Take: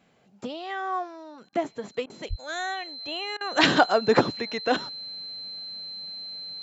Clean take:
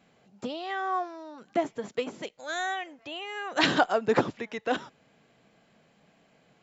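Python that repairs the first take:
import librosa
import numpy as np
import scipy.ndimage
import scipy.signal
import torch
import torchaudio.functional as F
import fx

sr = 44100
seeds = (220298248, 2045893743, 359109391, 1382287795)

y = fx.notch(x, sr, hz=4100.0, q=30.0)
y = fx.highpass(y, sr, hz=140.0, slope=24, at=(2.29, 2.41), fade=0.02)
y = fx.fix_interpolate(y, sr, at_s=(1.49, 2.06, 3.37), length_ms=37.0)
y = fx.gain(y, sr, db=fx.steps((0.0, 0.0), (3.08, -4.0)))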